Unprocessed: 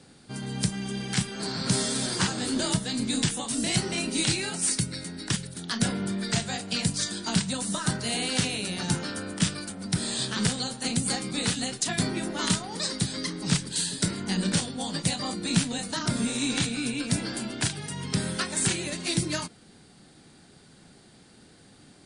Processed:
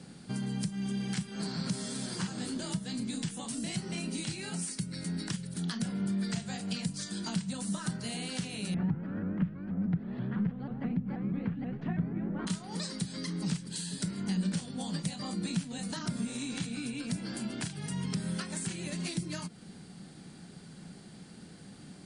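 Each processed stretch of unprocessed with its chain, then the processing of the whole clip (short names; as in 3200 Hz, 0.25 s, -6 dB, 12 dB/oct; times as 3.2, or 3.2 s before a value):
8.74–12.47 LPF 2200 Hz 24 dB/oct + tilt -2.5 dB/oct + shaped vibrato saw up 6.2 Hz, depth 160 cents
whole clip: notch 3700 Hz, Q 24; compressor 6:1, threshold -37 dBFS; bell 180 Hz +10.5 dB 0.63 oct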